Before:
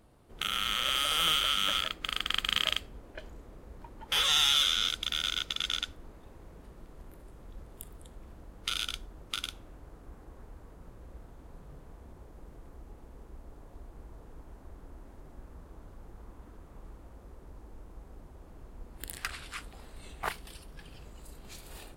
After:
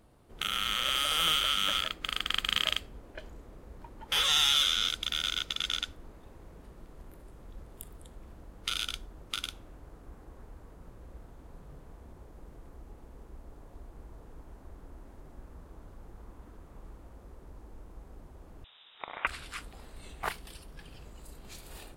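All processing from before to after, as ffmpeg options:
-filter_complex "[0:a]asettb=1/sr,asplit=3[a][b][c];[a]atrim=end=18.644[d];[b]atrim=start=18.64:end=19.27,asetpts=PTS-STARTPTS,afade=t=in:d=0.004:c=qsin,afade=t=out:st=0.626:d=0.004:c=qsin,highpass=300,equalizer=f=3.1k:w=1.4:g=14.5,lowpass=f=3.4k:t=q:w=0.5098,lowpass=f=3.4k:t=q:w=0.6013,lowpass=f=3.4k:t=q:w=0.9,lowpass=f=3.4k:t=q:w=2.563,afreqshift=-4000[e];[c]atrim=start=19.266[f];[d][e]acrossfade=d=0.004:c1=hsin:c2=qsin[g];[g][f]acrossfade=d=0.004:c1=qsin:c2=hsin"

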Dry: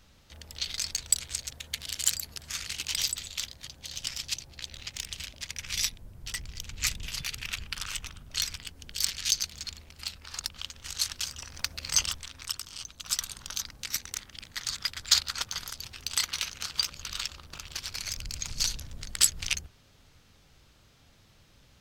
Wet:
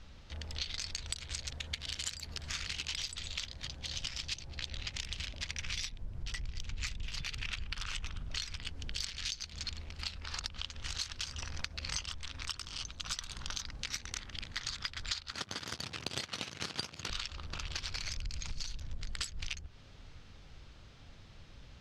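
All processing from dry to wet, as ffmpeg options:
-filter_complex "[0:a]asettb=1/sr,asplit=3[a][b][c];[a]atrim=end=15.314[d];[b]atrim=start=15.31:end=17.1,asetpts=PTS-STARTPTS,afade=t=in:d=0.004:c=qsin,afade=t=out:st=1.786:d=0.004:c=qsin,aeval=exprs='max(val(0),0)':c=same,acontrast=34,highpass=f=99:w=0.5412,highpass=f=99:w=1.3066[e];[c]atrim=start=17.096[f];[d][e]acrossfade=d=0.004:c1=hsin:c2=qsin[g];[g][f]acrossfade=d=0.004:c1=qsin:c2=hsin,lowpass=5k,lowshelf=f=64:g=9,acompressor=threshold=-37dB:ratio=16,volume=3dB"

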